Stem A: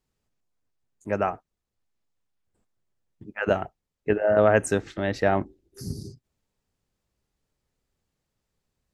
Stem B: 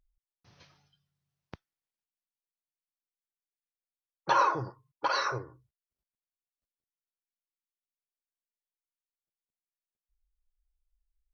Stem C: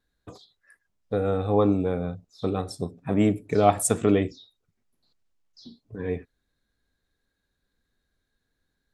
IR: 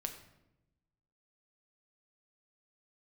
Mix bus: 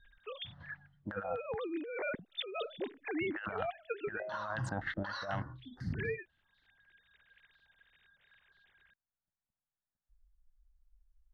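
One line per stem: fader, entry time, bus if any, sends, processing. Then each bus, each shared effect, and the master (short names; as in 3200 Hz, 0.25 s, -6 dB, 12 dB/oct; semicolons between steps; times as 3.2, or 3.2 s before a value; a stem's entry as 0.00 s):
-6.0 dB, 0.00 s, bus A, no send, stepped low-pass 8.1 Hz 440–3800 Hz
-1.5 dB, 0.00 s, bus A, no send, low-pass opened by the level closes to 1000 Hz, open at -29 dBFS; low shelf 410 Hz +8.5 dB
+1.0 dB, 0.00 s, no bus, no send, sine-wave speech; compressor 5:1, threshold -24 dBFS, peak gain reduction 12.5 dB; auto duck -15 dB, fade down 0.80 s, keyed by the first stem
bus A: 0.0 dB, fixed phaser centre 1000 Hz, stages 4; compressor 6:1, threshold -31 dBFS, peak gain reduction 14 dB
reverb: off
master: band shelf 2500 Hz +13 dB; negative-ratio compressor -38 dBFS, ratio -1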